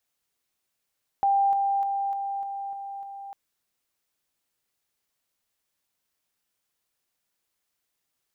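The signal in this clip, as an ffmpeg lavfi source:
ffmpeg -f lavfi -i "aevalsrc='pow(10,(-18.5-3*floor(t/0.3))/20)*sin(2*PI*793*t)':duration=2.1:sample_rate=44100" out.wav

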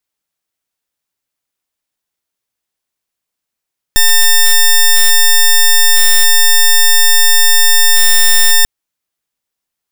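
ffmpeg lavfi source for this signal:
ffmpeg -f lavfi -i "aevalsrc='0.473*(2*lt(mod(1800*t,1),0.09)-1)':duration=4.69:sample_rate=44100" out.wav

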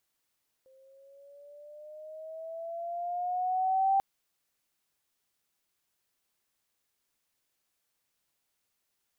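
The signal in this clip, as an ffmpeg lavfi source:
ffmpeg -f lavfi -i "aevalsrc='pow(10,(-21.5+35.5*(t/3.34-1))/20)*sin(2*PI*524*3.34/(7*log(2)/12)*(exp(7*log(2)/12*t/3.34)-1))':duration=3.34:sample_rate=44100" out.wav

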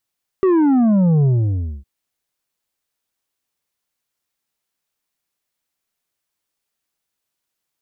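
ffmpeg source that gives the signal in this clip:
ffmpeg -f lavfi -i "aevalsrc='0.251*clip((1.41-t)/0.59,0,1)*tanh(2.11*sin(2*PI*390*1.41/log(65/390)*(exp(log(65/390)*t/1.41)-1)))/tanh(2.11)':duration=1.41:sample_rate=44100" out.wav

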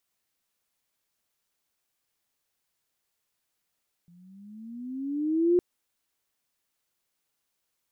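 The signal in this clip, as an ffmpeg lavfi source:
ffmpeg -f lavfi -i "aevalsrc='pow(10,(-17+35.5*(t/1.51-1))/20)*sin(2*PI*170*1.51/(13*log(2)/12)*(exp(13*log(2)/12*t/1.51)-1))':duration=1.51:sample_rate=44100" out.wav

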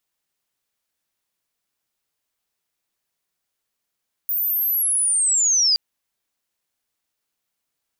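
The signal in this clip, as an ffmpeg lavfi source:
ffmpeg -f lavfi -i "aevalsrc='pow(10,(-19.5+5.5*t/1.47)/20)*sin(2*PI*(15000*t-10300*t*t/(2*1.47)))':duration=1.47:sample_rate=44100" out.wav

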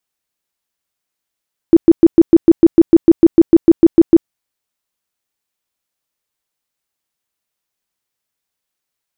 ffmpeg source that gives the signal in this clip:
ffmpeg -f lavfi -i "aevalsrc='0.891*sin(2*PI*332*mod(t,0.15))*lt(mod(t,0.15),12/332)':duration=2.55:sample_rate=44100" out.wav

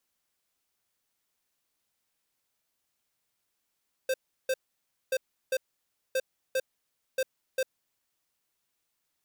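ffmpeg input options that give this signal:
ffmpeg -f lavfi -i "aevalsrc='0.0447*(2*lt(mod(523*t,1),0.5)-1)*clip(min(mod(mod(t,1.03),0.4),0.05-mod(mod(t,1.03),0.4))/0.005,0,1)*lt(mod(t,1.03),0.8)':duration=4.12:sample_rate=44100" out.wav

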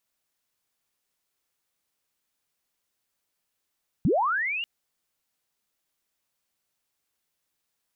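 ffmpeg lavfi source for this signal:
ffmpeg -f lavfi -i "aevalsrc='pow(10,(-18-10*t/0.59)/20)*sin(2*PI*(120*t+2780*t*t/(2*0.59)))':duration=0.59:sample_rate=44100" out.wav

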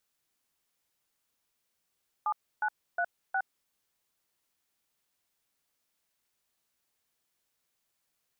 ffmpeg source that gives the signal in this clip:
ffmpeg -f lavfi -i "aevalsrc='0.0355*clip(min(mod(t,0.361),0.064-mod(t,0.361))/0.002,0,1)*(eq(floor(t/0.361),0)*(sin(2*PI*852*mod(t,0.361))+sin(2*PI*1209*mod(t,0.361)))+eq(floor(t/0.361),1)*(sin(2*PI*852*mod(t,0.361))+sin(2*PI*1477*mod(t,0.361)))+eq(floor(t/0.361),2)*(sin(2*PI*697*mod(t,0.361))+sin(2*PI*1477*mod(t,0.361)))+eq(floor(t/0.361),3)*(sin(2*PI*770*mod(t,0.361))+sin(2*PI*1477*mod(t,0.361))))':duration=1.444:sample_rate=44100" out.wav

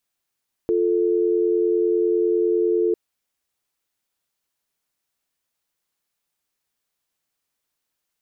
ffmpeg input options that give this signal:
ffmpeg -f lavfi -i "aevalsrc='0.106*(sin(2*PI*350*t)+sin(2*PI*440*t))':duration=2.25:sample_rate=44100" out.wav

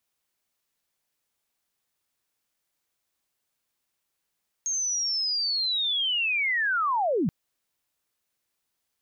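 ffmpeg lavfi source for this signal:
ffmpeg -f lavfi -i "aevalsrc='pow(10,(-25+3.5*t/2.63)/20)*sin(2*PI*(6500*t-6360*t*t/(2*2.63)))':duration=2.63:sample_rate=44100" out.wav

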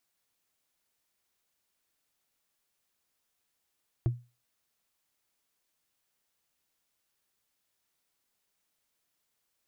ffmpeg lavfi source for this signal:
ffmpeg -f lavfi -i "aevalsrc='0.1*pow(10,-3*t/0.29)*sin(2*PI*121*t)+0.0355*pow(10,-3*t/0.086)*sin(2*PI*333.6*t)+0.0126*pow(10,-3*t/0.038)*sin(2*PI*653.9*t)+0.00447*pow(10,-3*t/0.021)*sin(2*PI*1080.9*t)+0.00158*pow(10,-3*t/0.013)*sin(2*PI*1614.1*t)':duration=0.45:sample_rate=44100" out.wav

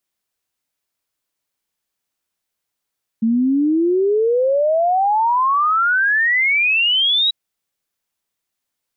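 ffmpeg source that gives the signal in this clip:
ffmpeg -f lavfi -i "aevalsrc='0.224*clip(min(t,4.09-t)/0.01,0,1)*sin(2*PI*220*4.09/log(3900/220)*(exp(log(3900/220)*t/4.09)-1))':duration=4.09:sample_rate=44100" out.wav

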